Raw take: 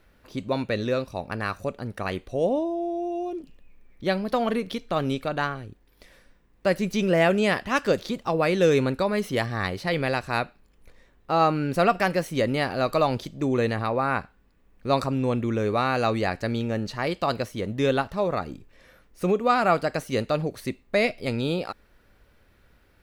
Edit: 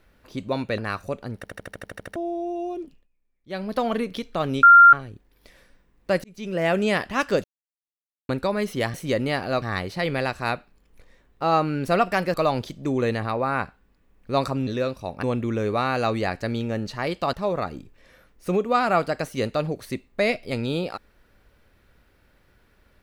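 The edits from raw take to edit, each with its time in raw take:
0.78–1.34 s: move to 15.23 s
1.92 s: stutter in place 0.08 s, 10 plays
3.38–4.27 s: dip -21.5 dB, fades 0.26 s
5.19–5.49 s: bleep 1.39 kHz -6.5 dBFS
6.80–7.37 s: fade in
8.00–8.85 s: mute
12.22–12.90 s: move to 9.50 s
17.33–18.08 s: delete

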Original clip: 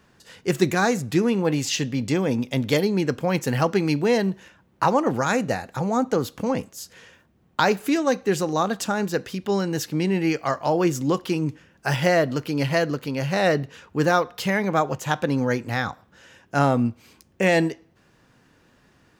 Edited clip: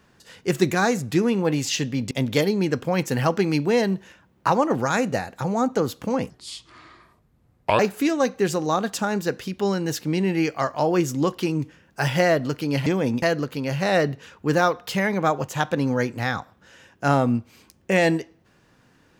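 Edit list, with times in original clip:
2.11–2.47 s: move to 12.73 s
6.66–7.66 s: speed 67%

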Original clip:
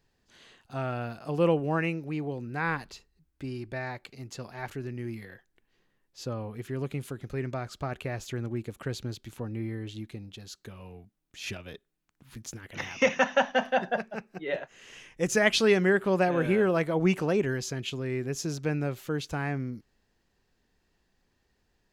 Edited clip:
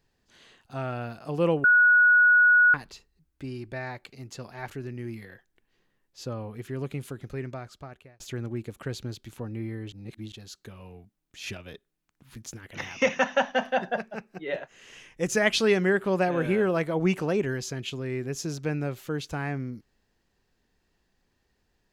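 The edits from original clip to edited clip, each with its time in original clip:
1.64–2.74 s: bleep 1.46 kHz -14.5 dBFS
7.23–8.20 s: fade out
9.92–10.32 s: reverse

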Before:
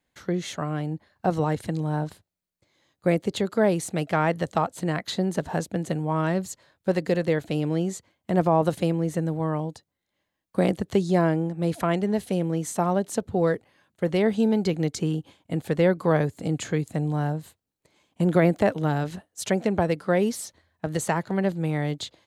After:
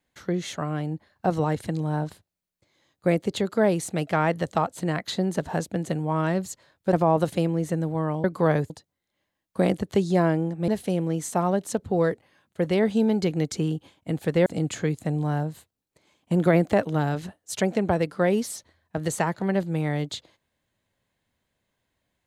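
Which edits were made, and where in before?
6.93–8.38 s: delete
11.67–12.11 s: delete
15.89–16.35 s: move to 9.69 s

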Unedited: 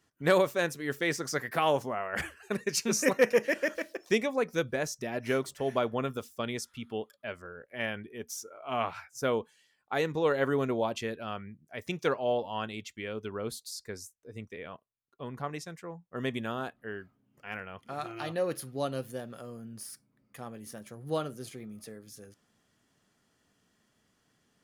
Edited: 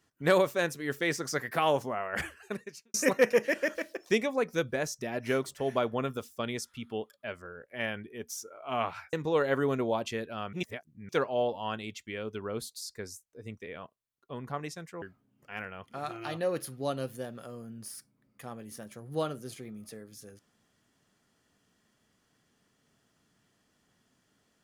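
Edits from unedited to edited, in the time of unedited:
2.42–2.94 s: fade out quadratic
9.13–10.03 s: delete
11.43–11.99 s: reverse
15.92–16.97 s: delete

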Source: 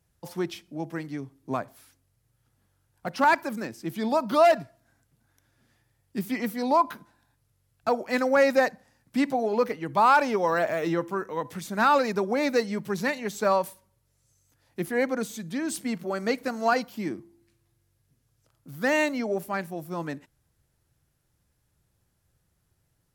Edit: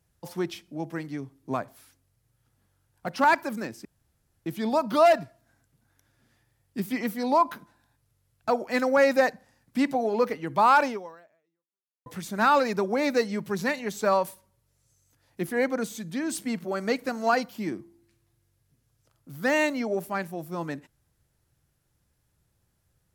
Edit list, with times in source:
3.85 s: insert room tone 0.61 s
10.25–11.45 s: fade out exponential

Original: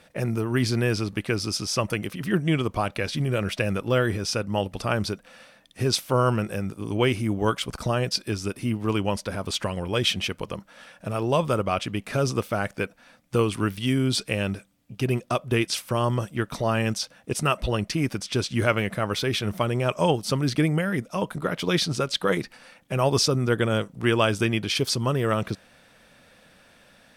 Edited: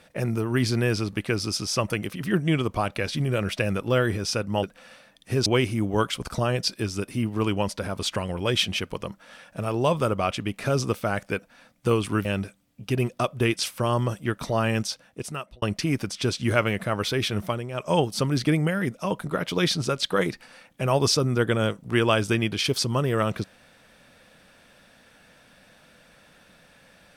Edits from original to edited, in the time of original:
4.63–5.12 s: delete
5.95–6.94 s: delete
13.73–14.36 s: delete
16.91–17.73 s: fade out
19.52–20.08 s: dip -10 dB, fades 0.26 s

